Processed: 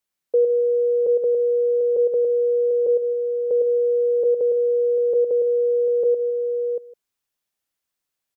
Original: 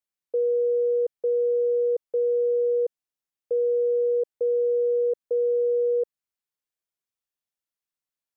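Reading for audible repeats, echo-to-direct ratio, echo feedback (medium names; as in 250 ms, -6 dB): 5, -3.5 dB, no regular repeats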